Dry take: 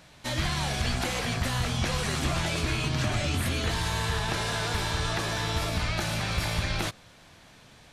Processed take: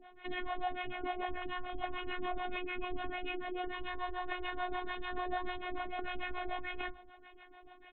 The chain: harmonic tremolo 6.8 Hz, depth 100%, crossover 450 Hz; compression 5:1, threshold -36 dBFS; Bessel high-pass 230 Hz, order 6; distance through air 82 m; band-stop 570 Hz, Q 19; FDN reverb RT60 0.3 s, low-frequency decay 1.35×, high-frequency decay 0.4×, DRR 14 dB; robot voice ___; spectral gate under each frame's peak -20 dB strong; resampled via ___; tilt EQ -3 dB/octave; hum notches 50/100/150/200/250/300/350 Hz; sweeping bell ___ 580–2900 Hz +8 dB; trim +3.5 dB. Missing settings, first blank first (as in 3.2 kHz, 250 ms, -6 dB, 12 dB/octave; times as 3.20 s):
362 Hz, 8 kHz, 1.7 Hz